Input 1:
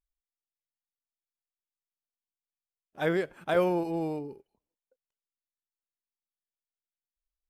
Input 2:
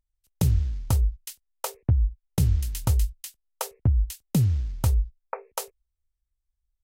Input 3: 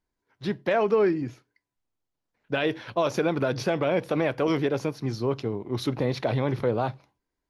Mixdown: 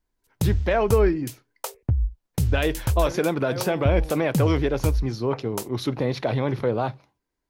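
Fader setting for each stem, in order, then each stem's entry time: −9.5, −1.0, +1.5 decibels; 0.00, 0.00, 0.00 seconds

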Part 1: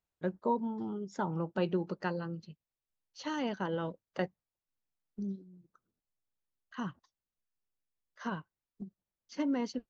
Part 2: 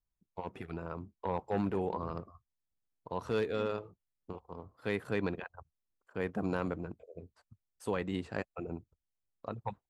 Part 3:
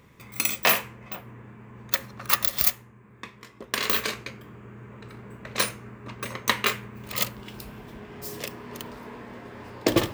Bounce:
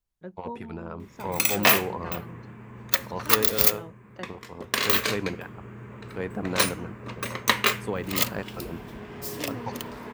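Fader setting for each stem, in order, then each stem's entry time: −7.0, +3.0, +2.0 decibels; 0.00, 0.00, 1.00 seconds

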